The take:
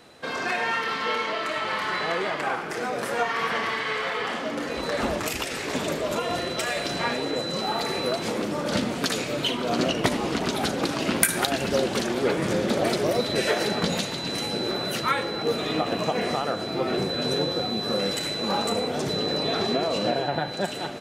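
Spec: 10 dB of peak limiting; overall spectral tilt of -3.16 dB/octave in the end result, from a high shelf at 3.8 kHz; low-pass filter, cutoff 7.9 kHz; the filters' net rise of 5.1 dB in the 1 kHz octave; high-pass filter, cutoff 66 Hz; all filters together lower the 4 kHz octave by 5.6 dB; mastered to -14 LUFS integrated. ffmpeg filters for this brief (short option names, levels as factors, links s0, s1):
-af "highpass=66,lowpass=7900,equalizer=f=1000:t=o:g=7.5,highshelf=f=3800:g=-4.5,equalizer=f=4000:t=o:g=-4,volume=3.76,alimiter=limit=0.708:level=0:latency=1"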